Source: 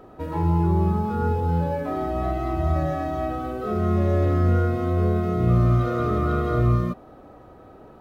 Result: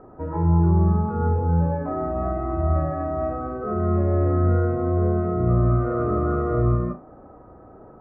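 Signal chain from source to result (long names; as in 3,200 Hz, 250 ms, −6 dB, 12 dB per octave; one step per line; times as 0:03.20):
low-pass filter 1,500 Hz 24 dB per octave
flutter between parallel walls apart 6.2 metres, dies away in 0.24 s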